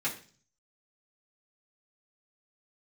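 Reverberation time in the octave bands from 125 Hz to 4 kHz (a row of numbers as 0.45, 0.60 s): 0.80, 0.55, 0.45, 0.40, 0.40, 0.50 s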